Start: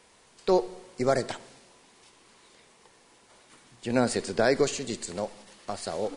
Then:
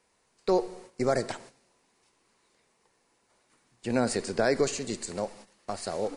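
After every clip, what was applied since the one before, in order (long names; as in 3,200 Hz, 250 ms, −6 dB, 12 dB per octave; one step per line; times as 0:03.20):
noise gate −48 dBFS, range −11 dB
parametric band 3,300 Hz −5.5 dB 0.39 octaves
in parallel at −2.5 dB: brickwall limiter −17 dBFS, peak gain reduction 7.5 dB
on the sum: level −5 dB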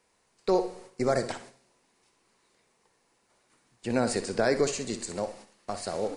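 flutter between parallel walls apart 10.5 metres, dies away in 0.31 s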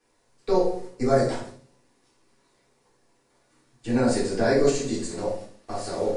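convolution reverb RT60 0.40 s, pre-delay 3 ms, DRR −8.5 dB
level −7.5 dB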